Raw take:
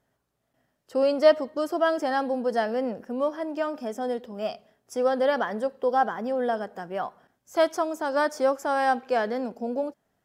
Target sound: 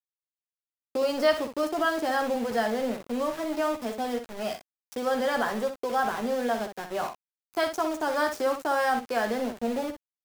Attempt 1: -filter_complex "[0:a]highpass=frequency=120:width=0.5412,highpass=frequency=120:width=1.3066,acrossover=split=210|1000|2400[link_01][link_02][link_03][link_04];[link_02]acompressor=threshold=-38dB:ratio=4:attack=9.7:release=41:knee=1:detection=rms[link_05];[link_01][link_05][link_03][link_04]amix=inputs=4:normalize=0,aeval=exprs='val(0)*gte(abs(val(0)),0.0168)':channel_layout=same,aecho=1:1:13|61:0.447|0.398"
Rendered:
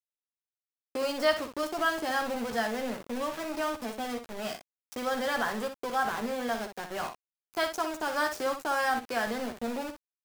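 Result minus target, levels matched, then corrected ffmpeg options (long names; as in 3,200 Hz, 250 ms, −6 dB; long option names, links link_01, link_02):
downward compressor: peak gain reduction +7 dB
-filter_complex "[0:a]highpass=frequency=120:width=0.5412,highpass=frequency=120:width=1.3066,acrossover=split=210|1000|2400[link_01][link_02][link_03][link_04];[link_02]acompressor=threshold=-29dB:ratio=4:attack=9.7:release=41:knee=1:detection=rms[link_05];[link_01][link_05][link_03][link_04]amix=inputs=4:normalize=0,aeval=exprs='val(0)*gte(abs(val(0)),0.0168)':channel_layout=same,aecho=1:1:13|61:0.447|0.398"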